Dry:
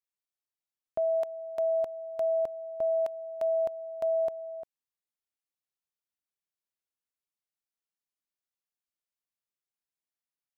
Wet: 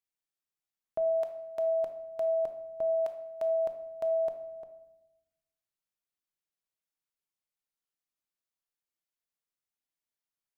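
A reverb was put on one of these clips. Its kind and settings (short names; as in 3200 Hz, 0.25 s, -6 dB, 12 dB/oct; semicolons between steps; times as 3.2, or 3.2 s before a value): shoebox room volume 370 m³, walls mixed, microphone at 0.56 m; gain -2 dB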